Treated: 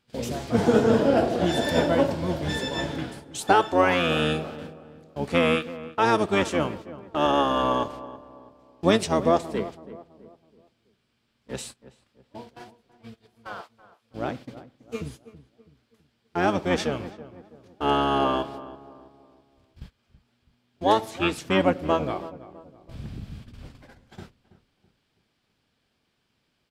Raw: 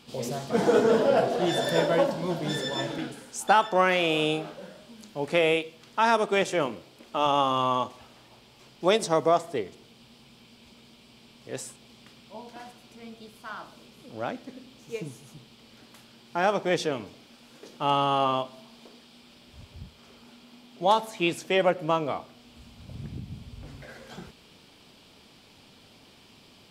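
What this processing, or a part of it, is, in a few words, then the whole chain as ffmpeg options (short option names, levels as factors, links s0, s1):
octave pedal: -filter_complex "[0:a]agate=range=0.1:threshold=0.00794:ratio=16:detection=peak,asplit=2[s0][s1];[s1]asetrate=22050,aresample=44100,atempo=2,volume=0.708[s2];[s0][s2]amix=inputs=2:normalize=0,asettb=1/sr,asplit=3[s3][s4][s5];[s3]atrim=end=13.614[s6];[s4]atrim=start=13.61:end=14.11,asetpts=PTS-STARTPTS,afade=t=in:d=0.004:c=qsin,afade=t=out:st=0.496:d=0.004:c=qsin,highpass=740[s7];[s5]atrim=start=14.106[s8];[s6][s7]acrossfade=d=0.004:c1=hsin:c2=qsin[s9];[s9][s8]acrossfade=d=0.004:c1=qsin:c2=hsin,asplit=2[s10][s11];[s11]adelay=328,lowpass=f=1300:p=1,volume=0.178,asplit=2[s12][s13];[s13]adelay=328,lowpass=f=1300:p=1,volume=0.42,asplit=2[s14][s15];[s15]adelay=328,lowpass=f=1300:p=1,volume=0.42,asplit=2[s16][s17];[s17]adelay=328,lowpass=f=1300:p=1,volume=0.42[s18];[s10][s12][s14][s16][s18]amix=inputs=5:normalize=0"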